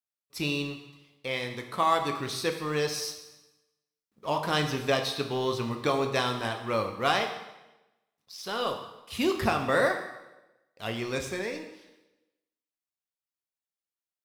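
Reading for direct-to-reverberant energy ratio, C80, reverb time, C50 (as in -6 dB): 4.5 dB, 9.5 dB, 1.0 s, 8.0 dB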